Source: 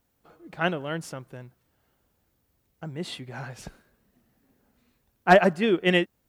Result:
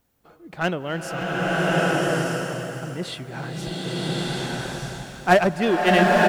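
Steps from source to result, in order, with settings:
in parallel at −7 dB: wave folding −22 dBFS
on the sum: single-tap delay 563 ms −12 dB
slow-attack reverb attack 1,220 ms, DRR −7.5 dB

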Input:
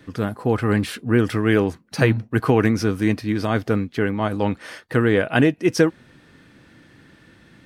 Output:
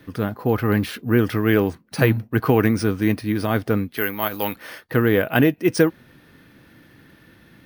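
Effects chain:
bad sample-rate conversion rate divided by 3×, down filtered, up hold
0:03.97–0:04.56: spectral tilt +3.5 dB per octave

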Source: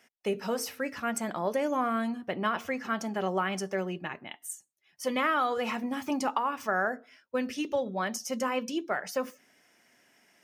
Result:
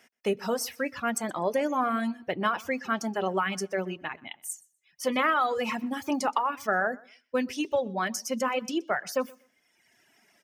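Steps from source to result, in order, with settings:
on a send: repeating echo 124 ms, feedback 19%, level −13 dB
on the sum: reverb reduction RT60 1.2 s
level +3 dB

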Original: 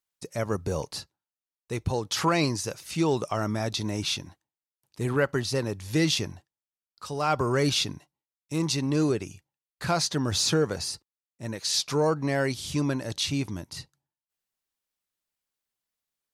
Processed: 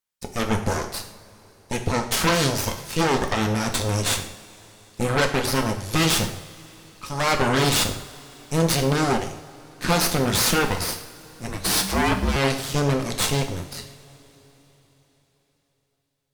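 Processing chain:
harmonic generator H 8 −8 dB, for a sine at −12 dBFS
coupled-rooms reverb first 0.58 s, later 4.2 s, from −20 dB, DRR 4 dB
0:11.48–0:12.36: frequency shifter −200 Hz

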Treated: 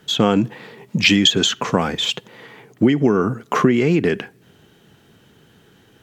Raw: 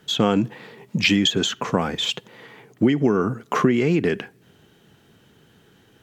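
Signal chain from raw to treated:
0:01.06–0:01.93: parametric band 4,600 Hz +3.5 dB 2.2 octaves
level +3 dB

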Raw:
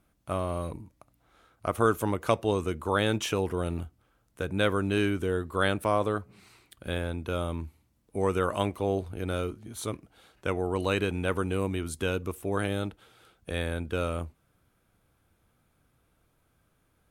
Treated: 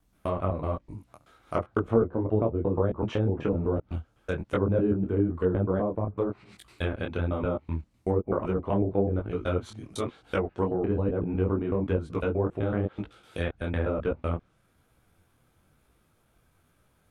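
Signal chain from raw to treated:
slices reordered back to front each 126 ms, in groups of 2
treble cut that deepens with the level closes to 480 Hz, closed at −23.5 dBFS
micro pitch shift up and down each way 37 cents
level +7 dB

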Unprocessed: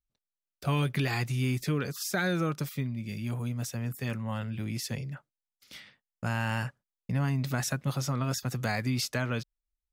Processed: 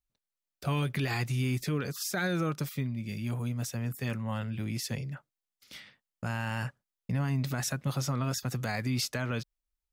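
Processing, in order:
brickwall limiter −21 dBFS, peak gain reduction 4.5 dB

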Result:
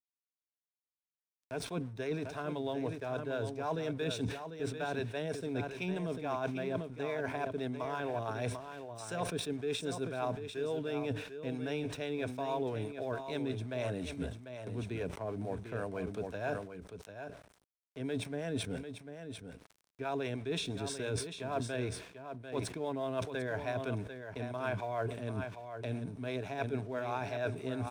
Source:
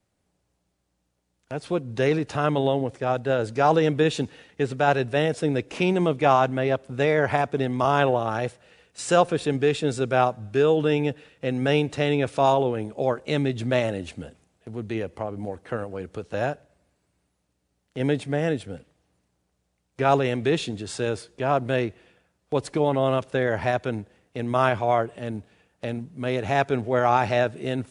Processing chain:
EQ curve with evenly spaced ripples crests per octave 1.6, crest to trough 8 dB
reversed playback
downward compressor 6 to 1, threshold −34 dBFS, peak gain reduction 20 dB
reversed playback
dead-zone distortion −59.5 dBFS
two-band tremolo in antiphase 6.1 Hz, depth 50%, crossover 430 Hz
on a send: single-tap delay 745 ms −9 dB
on the sum: level that may fall only so fast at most 91 dB per second
level +2 dB

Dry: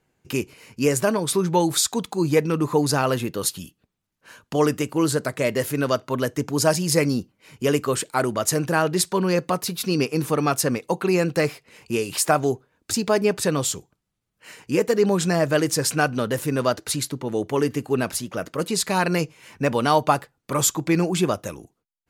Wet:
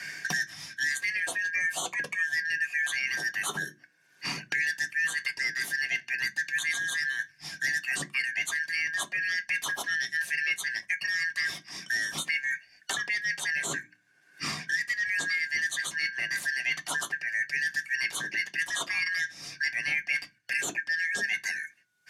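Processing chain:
band-splitting scrambler in four parts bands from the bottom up 3142
low-pass filter 11,000 Hz 12 dB per octave
low-shelf EQ 110 Hz −9.5 dB
reversed playback
downward compressor 6 to 1, threshold −30 dBFS, peak gain reduction 16.5 dB
reversed playback
mains-hum notches 60/120/180/240/300 Hz
on a send at −4 dB: high-shelf EQ 4,300 Hz +11.5 dB + convolution reverb RT60 0.15 s, pre-delay 3 ms
on the sum: multiband upward and downward compressor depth 100%

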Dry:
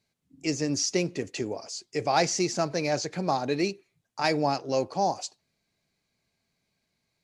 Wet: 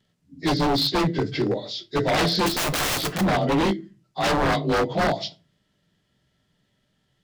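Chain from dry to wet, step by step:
partials spread apart or drawn together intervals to 90%
low-shelf EQ 350 Hz +8 dB
0:02.46–0:03.21: wrap-around overflow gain 27 dB
rectangular room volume 120 cubic metres, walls furnished, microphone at 0.46 metres
wave folding −22.5 dBFS
level +7 dB

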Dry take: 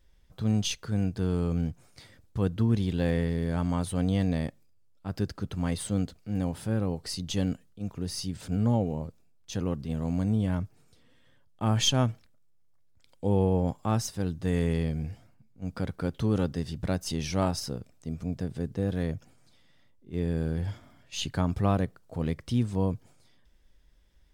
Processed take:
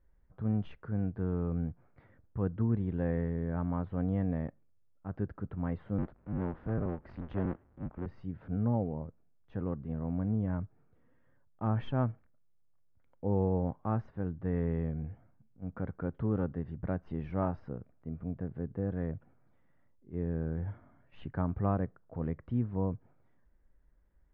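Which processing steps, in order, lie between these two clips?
0:05.98–0:08.06: sub-harmonics by changed cycles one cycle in 2, inverted
low-pass filter 1,700 Hz 24 dB per octave
level −5 dB

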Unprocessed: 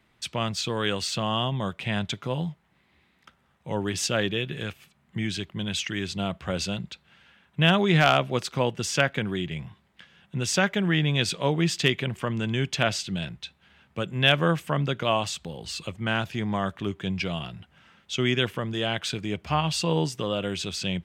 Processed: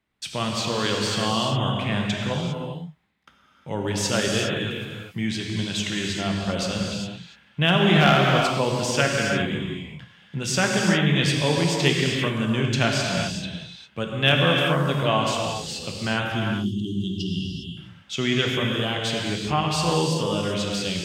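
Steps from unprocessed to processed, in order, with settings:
noise gate −58 dBFS, range −13 dB
time-frequency box erased 0:16.30–0:17.77, 400–2,700 Hz
reverb whose tail is shaped and stops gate 430 ms flat, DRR −1 dB

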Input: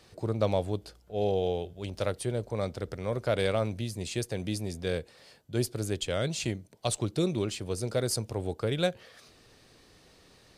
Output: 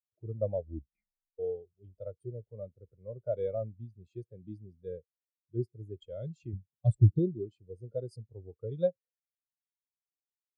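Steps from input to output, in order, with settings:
0:00.56: tape stop 0.83 s
0:06.53–0:07.19: low-shelf EQ 190 Hz +11 dB
every bin expanded away from the loudest bin 2.5 to 1

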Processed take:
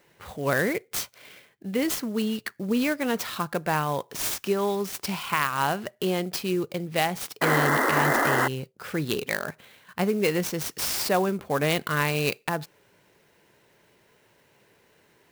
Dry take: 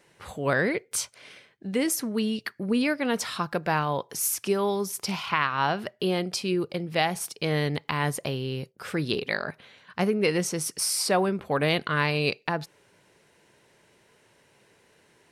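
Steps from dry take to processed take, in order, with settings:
sound drawn into the spectrogram noise, 0:07.41–0:08.48, 220–2,100 Hz −23 dBFS
converter with an unsteady clock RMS 0.027 ms

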